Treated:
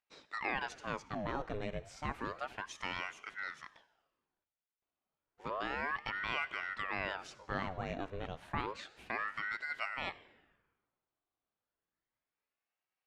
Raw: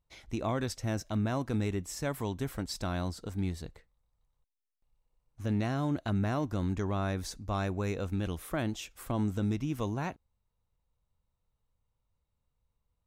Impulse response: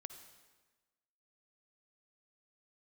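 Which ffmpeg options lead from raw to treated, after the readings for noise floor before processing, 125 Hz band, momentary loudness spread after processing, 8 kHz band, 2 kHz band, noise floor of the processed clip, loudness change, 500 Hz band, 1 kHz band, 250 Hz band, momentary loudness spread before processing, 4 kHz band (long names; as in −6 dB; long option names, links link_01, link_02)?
−83 dBFS, −16.5 dB, 7 LU, −13.0 dB, +6.0 dB, below −85 dBFS, −6.0 dB, −7.5 dB, 0.0 dB, −14.5 dB, 6 LU, −2.0 dB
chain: -filter_complex "[0:a]highpass=240,lowpass=3000,asplit=2[link_01][link_02];[1:a]atrim=start_sample=2205,lowshelf=frequency=430:gain=-10.5,highshelf=frequency=6800:gain=6.5[link_03];[link_02][link_03]afir=irnorm=-1:irlink=0,volume=2dB[link_04];[link_01][link_04]amix=inputs=2:normalize=0,aeval=exprs='val(0)*sin(2*PI*980*n/s+980*0.8/0.31*sin(2*PI*0.31*n/s))':channel_layout=same,volume=-3dB"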